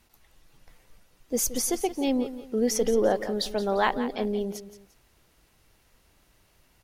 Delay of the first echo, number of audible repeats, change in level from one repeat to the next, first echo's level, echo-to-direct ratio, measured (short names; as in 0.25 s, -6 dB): 0.173 s, 2, -9.5 dB, -13.0 dB, -12.5 dB